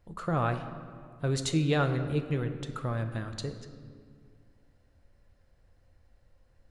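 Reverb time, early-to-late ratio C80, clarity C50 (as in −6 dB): 1.9 s, 10.5 dB, 9.5 dB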